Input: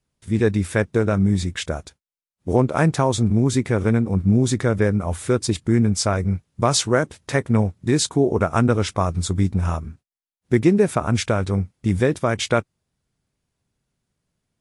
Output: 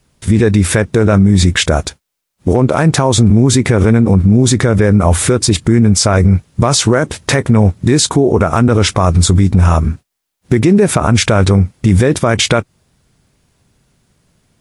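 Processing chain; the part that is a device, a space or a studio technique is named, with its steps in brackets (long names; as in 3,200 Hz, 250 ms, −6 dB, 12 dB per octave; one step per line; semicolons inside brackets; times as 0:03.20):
loud club master (downward compressor 2 to 1, threshold −22 dBFS, peak gain reduction 7 dB; hard clipping −11.5 dBFS, distortion −39 dB; boost into a limiter +20.5 dB)
level −1 dB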